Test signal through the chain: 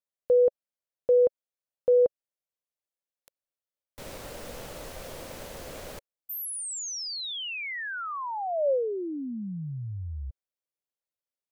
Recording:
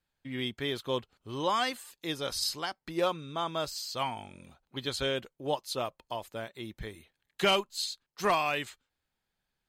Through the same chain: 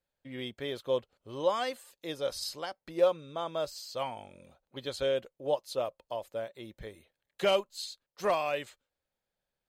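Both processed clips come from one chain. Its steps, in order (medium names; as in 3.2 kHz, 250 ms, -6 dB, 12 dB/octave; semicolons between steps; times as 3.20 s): peaking EQ 550 Hz +12 dB 0.59 oct; trim -6 dB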